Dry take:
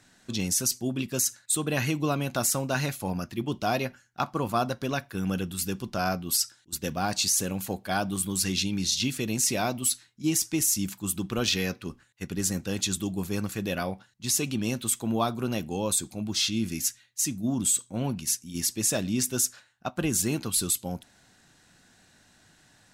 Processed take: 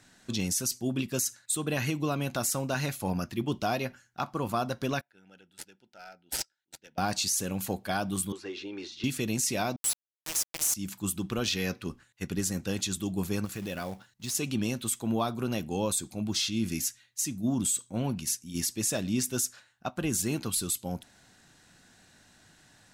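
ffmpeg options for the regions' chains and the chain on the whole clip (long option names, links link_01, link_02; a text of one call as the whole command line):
ffmpeg -i in.wav -filter_complex "[0:a]asettb=1/sr,asplit=3[link_01][link_02][link_03];[link_01]atrim=end=5.014[link_04];[link_02]atrim=start=5.01:end=6.98,asetpts=PTS-STARTPTS,afade=type=in:duration=0.004:curve=qsin,afade=type=out:start_time=1.966:duration=0.004:curve=qsin,aderivative,adynamicsmooth=sensitivity=4:basefreq=1300,asuperstop=centerf=1100:order=8:qfactor=3.7[link_05];[link_03]atrim=start=6.976[link_06];[link_04][link_05]acrossfade=duration=0.004:curve1=hsin:curve2=qsin[link_07];[link_07][link_06]acrossfade=duration=0.004:curve1=qsin:curve2=hsin,asettb=1/sr,asplit=3[link_08][link_09][link_10];[link_08]atrim=end=8.324[link_11];[link_09]atrim=start=8.32:end=9.04,asetpts=PTS-STARTPTS,afade=type=in:duration=0.004:curve=qsin,afade=type=out:start_time=0.716:duration=0.004:curve=qsin,lowshelf=frequency=260:width_type=q:width=3:gain=-13,acrossover=split=670|1500[link_12][link_13][link_14];[link_12]acompressor=threshold=-38dB:ratio=4[link_15];[link_13]acompressor=threshold=-52dB:ratio=4[link_16];[link_14]acompressor=threshold=-36dB:ratio=4[link_17];[link_15][link_16][link_17]amix=inputs=3:normalize=0,highpass=110,lowpass=2800[link_18];[link_10]atrim=start=9.036[link_19];[link_11][link_18]acrossfade=duration=0.004:curve1=hsin:curve2=qsin[link_20];[link_20][link_19]acrossfade=duration=0.004:curve1=qsin:curve2=hsin,asettb=1/sr,asplit=3[link_21][link_22][link_23];[link_21]atrim=end=9.764[link_24];[link_22]atrim=start=9.76:end=10.74,asetpts=PTS-STARTPTS,afade=type=in:duration=0.004:curve=qsin,afade=type=out:start_time=0.976:duration=0.004:curve=qsin,tiltshelf=frequency=1100:gain=-9,aecho=1:1:6.6:0.97,atrim=end_sample=43218,aeval=exprs='val(0)*gte(abs(val(0)),0.141)':channel_layout=same[link_25];[link_23]atrim=start=10.736[link_26];[link_24][link_25]acrossfade=duration=0.004:curve1=hsin:curve2=qsin[link_27];[link_27][link_26]acrossfade=duration=0.004:curve1=qsin:curve2=hsin,asettb=1/sr,asplit=3[link_28][link_29][link_30];[link_28]atrim=end=13.454[link_31];[link_29]atrim=start=13.45:end=14.35,asetpts=PTS-STARTPTS,afade=type=in:duration=0.004:curve=qsin,afade=type=out:start_time=0.896:duration=0.004:curve=qsin,acompressor=threshold=-36dB:ratio=2:attack=3.2:release=140:knee=1:detection=peak,aeval=exprs='0.0531*(abs(mod(val(0)/0.0531+3,4)-2)-1)':channel_layout=same,acrusher=bits=4:mode=log:mix=0:aa=0.000001[link_32];[link_30]atrim=start=14.346[link_33];[link_31][link_32]acrossfade=duration=0.004:curve1=hsin:curve2=qsin[link_34];[link_34][link_33]acrossfade=duration=0.004:curve1=qsin:curve2=hsin,acontrast=34,alimiter=limit=-14dB:level=0:latency=1:release=263,volume=-5dB" out.wav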